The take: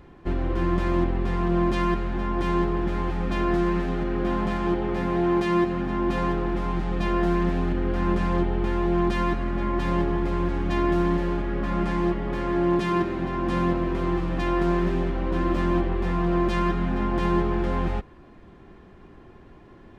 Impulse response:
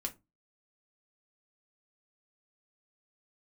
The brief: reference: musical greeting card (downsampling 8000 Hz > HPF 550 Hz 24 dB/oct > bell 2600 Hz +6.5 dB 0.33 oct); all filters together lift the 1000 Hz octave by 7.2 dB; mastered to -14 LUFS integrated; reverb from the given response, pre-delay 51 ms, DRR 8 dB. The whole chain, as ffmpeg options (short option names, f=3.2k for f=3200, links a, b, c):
-filter_complex "[0:a]equalizer=f=1k:t=o:g=8,asplit=2[a][b];[1:a]atrim=start_sample=2205,adelay=51[c];[b][c]afir=irnorm=-1:irlink=0,volume=-8dB[d];[a][d]amix=inputs=2:normalize=0,aresample=8000,aresample=44100,highpass=f=550:w=0.5412,highpass=f=550:w=1.3066,equalizer=f=2.6k:t=o:w=0.33:g=6.5,volume=12.5dB"